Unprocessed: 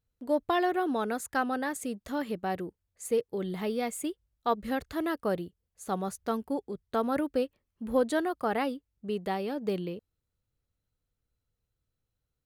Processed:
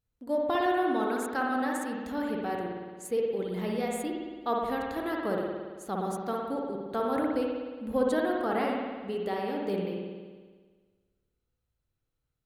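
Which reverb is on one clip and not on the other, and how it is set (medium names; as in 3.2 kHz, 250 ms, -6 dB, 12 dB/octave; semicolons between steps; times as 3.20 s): spring tank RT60 1.5 s, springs 55 ms, chirp 40 ms, DRR -1.5 dB; trim -3 dB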